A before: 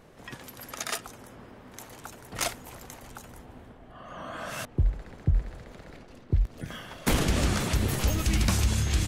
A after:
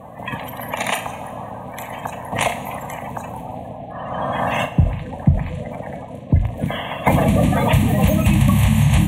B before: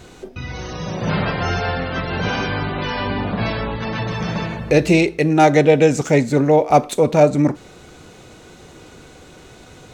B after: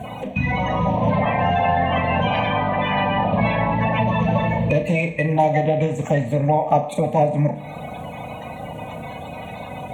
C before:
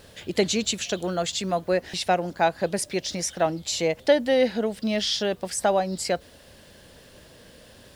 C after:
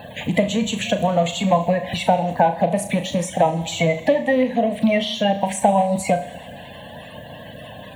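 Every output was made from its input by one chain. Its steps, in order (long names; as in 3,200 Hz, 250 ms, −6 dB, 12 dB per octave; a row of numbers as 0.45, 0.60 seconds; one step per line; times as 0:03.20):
spectral magnitudes quantised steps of 30 dB
high-pass filter 110 Hz 12 dB per octave
flutter between parallel walls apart 6.1 metres, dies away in 0.23 s
downward compressor 5 to 1, threshold −29 dBFS
high-shelf EQ 2,500 Hz −11.5 dB
phaser with its sweep stopped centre 1,400 Hz, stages 6
four-comb reverb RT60 1.4 s, combs from 27 ms, DRR 13.5 dB
loudness normalisation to −20 LKFS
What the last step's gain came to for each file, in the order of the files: +21.5, +16.5, +19.5 decibels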